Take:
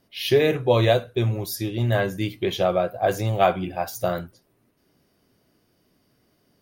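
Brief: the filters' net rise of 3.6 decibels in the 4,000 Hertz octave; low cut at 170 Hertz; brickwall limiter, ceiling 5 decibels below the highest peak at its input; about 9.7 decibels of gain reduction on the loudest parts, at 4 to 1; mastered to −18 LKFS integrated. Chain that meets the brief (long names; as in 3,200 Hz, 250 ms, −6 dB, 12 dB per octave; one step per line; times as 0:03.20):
high-pass filter 170 Hz
parametric band 4,000 Hz +4.5 dB
downward compressor 4 to 1, threshold −25 dBFS
level +12.5 dB
brickwall limiter −6.5 dBFS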